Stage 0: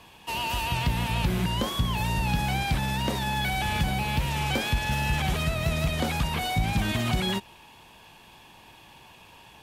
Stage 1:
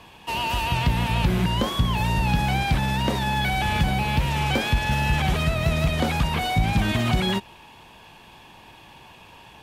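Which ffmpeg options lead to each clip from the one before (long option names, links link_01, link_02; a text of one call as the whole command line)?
ffmpeg -i in.wav -af "highshelf=frequency=5000:gain=-6.5,volume=4.5dB" out.wav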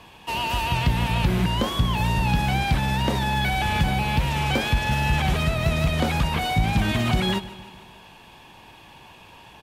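ffmpeg -i in.wav -af "aecho=1:1:151|302|453|604|755:0.141|0.0805|0.0459|0.0262|0.0149" out.wav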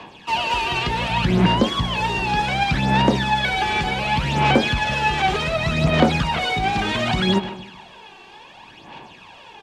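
ffmpeg -i in.wav -filter_complex "[0:a]aphaser=in_gain=1:out_gain=1:delay=2.6:decay=0.58:speed=0.67:type=sinusoidal,acrossover=split=160 7600:gain=0.2 1 0.0631[link_01][link_02][link_03];[link_01][link_02][link_03]amix=inputs=3:normalize=0,volume=3dB" out.wav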